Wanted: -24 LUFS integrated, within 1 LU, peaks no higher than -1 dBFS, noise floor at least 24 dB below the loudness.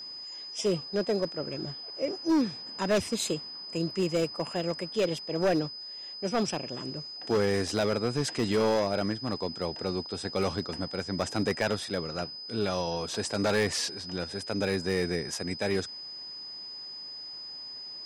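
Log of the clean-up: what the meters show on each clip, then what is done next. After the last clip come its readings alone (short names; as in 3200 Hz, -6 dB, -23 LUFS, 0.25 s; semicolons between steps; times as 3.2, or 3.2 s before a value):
clipped 1.2%; flat tops at -20.5 dBFS; steady tone 5000 Hz; tone level -39 dBFS; loudness -31.0 LUFS; peak -20.5 dBFS; loudness target -24.0 LUFS
-> clip repair -20.5 dBFS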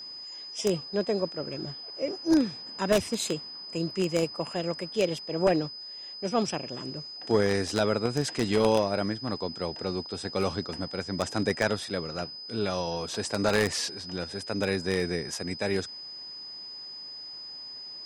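clipped 0.0%; steady tone 5000 Hz; tone level -39 dBFS
-> notch 5000 Hz, Q 30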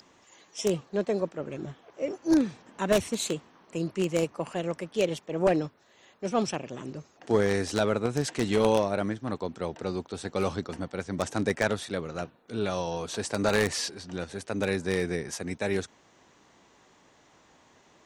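steady tone none; loudness -29.5 LUFS; peak -11.0 dBFS; loudness target -24.0 LUFS
-> gain +5.5 dB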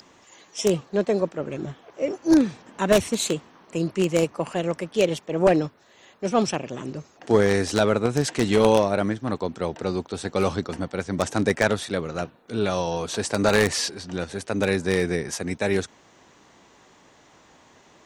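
loudness -24.0 LUFS; peak -5.5 dBFS; noise floor -55 dBFS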